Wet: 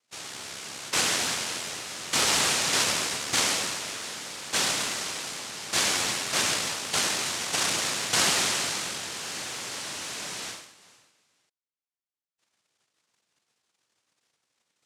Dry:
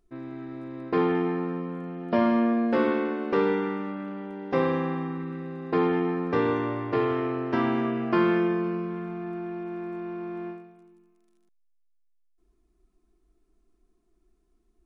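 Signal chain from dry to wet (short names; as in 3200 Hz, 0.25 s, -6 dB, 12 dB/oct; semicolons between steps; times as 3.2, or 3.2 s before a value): noise vocoder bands 1; gain -2 dB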